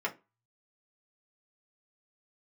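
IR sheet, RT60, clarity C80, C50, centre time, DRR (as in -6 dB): 0.25 s, 25.5 dB, 18.0 dB, 9 ms, -3.0 dB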